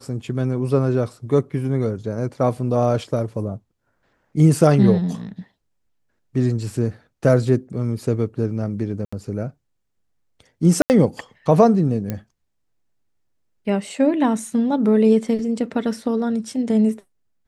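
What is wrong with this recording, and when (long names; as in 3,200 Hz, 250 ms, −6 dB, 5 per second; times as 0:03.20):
0:09.05–0:09.12: drop-out 75 ms
0:10.82–0:10.90: drop-out 79 ms
0:12.10: click −12 dBFS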